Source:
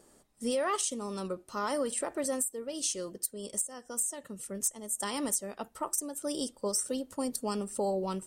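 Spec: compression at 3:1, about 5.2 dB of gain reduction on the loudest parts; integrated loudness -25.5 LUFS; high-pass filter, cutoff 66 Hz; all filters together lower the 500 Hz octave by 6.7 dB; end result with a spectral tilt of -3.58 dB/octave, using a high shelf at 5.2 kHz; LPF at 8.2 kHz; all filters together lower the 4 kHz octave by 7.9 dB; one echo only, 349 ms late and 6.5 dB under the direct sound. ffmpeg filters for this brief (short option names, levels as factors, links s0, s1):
-af "highpass=66,lowpass=8200,equalizer=f=500:t=o:g=-8,equalizer=f=4000:t=o:g=-8,highshelf=f=5200:g=-5.5,acompressor=threshold=0.0126:ratio=3,aecho=1:1:349:0.473,volume=6.31"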